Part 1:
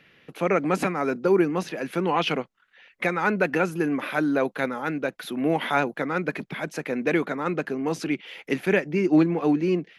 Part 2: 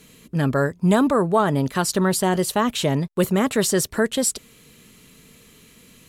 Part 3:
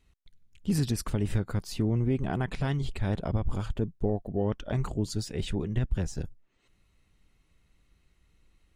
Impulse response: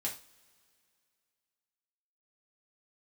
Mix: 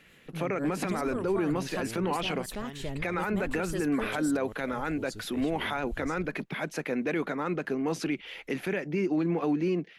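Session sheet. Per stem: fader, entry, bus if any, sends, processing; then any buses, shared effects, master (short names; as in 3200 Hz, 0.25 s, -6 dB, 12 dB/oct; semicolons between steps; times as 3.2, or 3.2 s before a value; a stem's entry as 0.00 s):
-1.5 dB, 0.00 s, no send, dry
-13.5 dB, 0.00 s, no send, rotary speaker horn 5.5 Hz
-5.5 dB, 0.00 s, no send, limiter -22 dBFS, peak gain reduction 5.5 dB; bell 140 Hz -11.5 dB 1.1 oct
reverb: off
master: limiter -20.5 dBFS, peak gain reduction 11 dB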